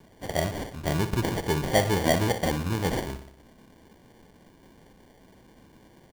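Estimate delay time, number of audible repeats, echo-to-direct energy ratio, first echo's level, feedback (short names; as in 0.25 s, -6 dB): 60 ms, 6, -9.0 dB, -11.0 dB, 58%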